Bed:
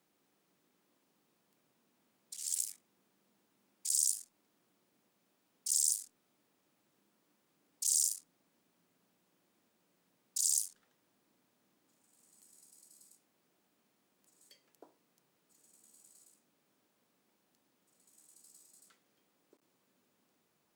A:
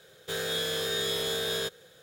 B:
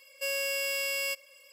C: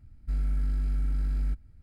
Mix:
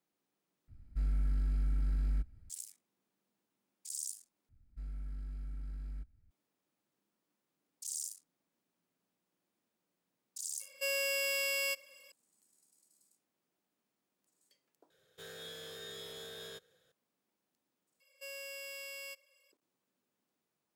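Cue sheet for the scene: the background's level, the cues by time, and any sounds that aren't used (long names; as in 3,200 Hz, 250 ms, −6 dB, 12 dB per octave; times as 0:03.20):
bed −10 dB
0:00.68: overwrite with C −4.5 dB
0:04.49: overwrite with C −15 dB
0:10.60: mix in B −2.5 dB
0:14.90: overwrite with A −17 dB
0:18.00: overwrite with B −14.5 dB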